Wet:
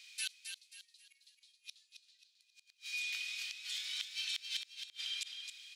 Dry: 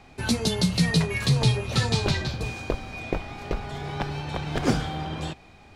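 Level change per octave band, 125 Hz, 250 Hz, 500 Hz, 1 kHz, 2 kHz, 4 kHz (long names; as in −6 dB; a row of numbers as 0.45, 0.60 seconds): below −40 dB, below −40 dB, below −40 dB, below −35 dB, −11.5 dB, −8.5 dB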